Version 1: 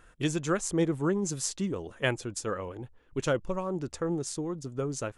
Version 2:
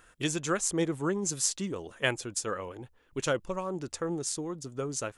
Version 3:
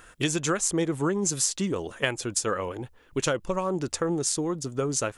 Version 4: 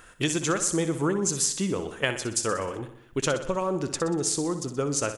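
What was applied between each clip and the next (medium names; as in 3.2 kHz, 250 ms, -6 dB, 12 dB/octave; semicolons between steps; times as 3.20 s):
tilt EQ +1.5 dB/octave
compression, threshold -30 dBFS, peak gain reduction 8.5 dB; trim +8 dB
feedback delay 62 ms, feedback 57%, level -11 dB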